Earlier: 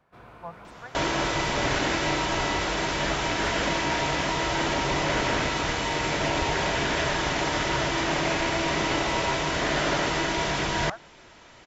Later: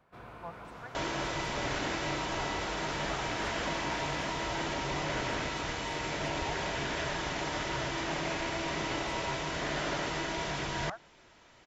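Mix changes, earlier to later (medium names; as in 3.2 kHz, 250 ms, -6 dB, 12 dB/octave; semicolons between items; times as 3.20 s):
speech -4.5 dB; second sound -8.5 dB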